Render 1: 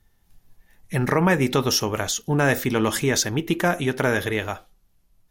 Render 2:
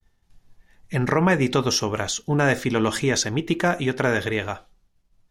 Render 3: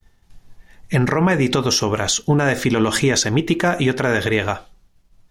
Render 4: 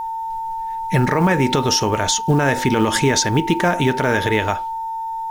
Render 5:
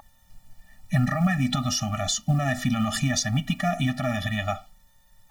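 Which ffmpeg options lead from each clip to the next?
ffmpeg -i in.wav -af "agate=range=-33dB:threshold=-57dB:ratio=3:detection=peak,lowpass=7600" out.wav
ffmpeg -i in.wav -af "alimiter=limit=-16.5dB:level=0:latency=1:release=102,volume=9dB" out.wav
ffmpeg -i in.wav -af "aeval=exprs='val(0)+0.0708*sin(2*PI*900*n/s)':channel_layout=same,acrusher=bits=8:mode=log:mix=0:aa=0.000001" out.wav
ffmpeg -i in.wav -af "afftfilt=real='re*eq(mod(floor(b*sr/1024/280),2),0)':imag='im*eq(mod(floor(b*sr/1024/280),2),0)':win_size=1024:overlap=0.75,volume=-4dB" out.wav

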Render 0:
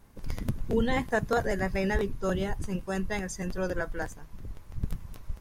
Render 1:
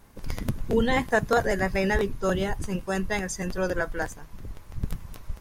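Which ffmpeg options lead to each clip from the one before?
ffmpeg -i in.wav -af "lowshelf=frequency=340:gain=-4,volume=5.5dB" out.wav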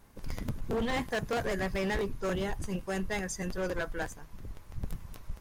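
ffmpeg -i in.wav -af "asoftclip=type=hard:threshold=-23dB,volume=-4.5dB" out.wav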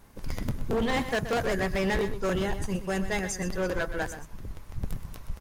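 ffmpeg -i in.wav -af "aecho=1:1:125:0.266,volume=4dB" out.wav

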